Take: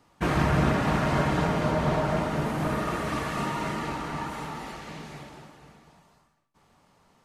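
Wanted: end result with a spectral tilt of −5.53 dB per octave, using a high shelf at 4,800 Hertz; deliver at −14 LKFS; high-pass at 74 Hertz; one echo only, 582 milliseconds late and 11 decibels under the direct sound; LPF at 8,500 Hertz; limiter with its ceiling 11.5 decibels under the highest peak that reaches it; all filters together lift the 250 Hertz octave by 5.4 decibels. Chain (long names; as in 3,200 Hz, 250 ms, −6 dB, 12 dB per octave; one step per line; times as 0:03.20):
high-pass filter 74 Hz
low-pass filter 8,500 Hz
parametric band 250 Hz +7.5 dB
high-shelf EQ 4,800 Hz +6.5 dB
brickwall limiter −19.5 dBFS
single-tap delay 582 ms −11 dB
level +14.5 dB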